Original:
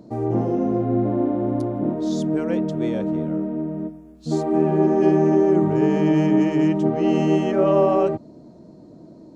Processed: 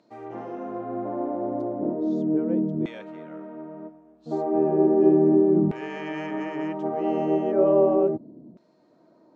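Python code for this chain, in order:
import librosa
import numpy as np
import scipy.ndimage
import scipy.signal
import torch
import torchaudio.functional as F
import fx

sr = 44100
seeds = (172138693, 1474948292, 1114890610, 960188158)

y = fx.filter_lfo_bandpass(x, sr, shape='saw_down', hz=0.35, low_hz=210.0, high_hz=2500.0, q=1.1)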